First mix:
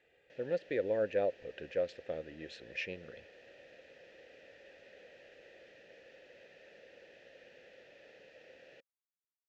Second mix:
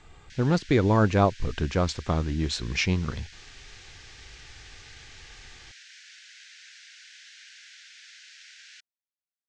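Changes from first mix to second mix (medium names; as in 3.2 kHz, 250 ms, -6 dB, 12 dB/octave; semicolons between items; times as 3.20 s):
background: add steep high-pass 1.5 kHz 96 dB/octave; master: remove vowel filter e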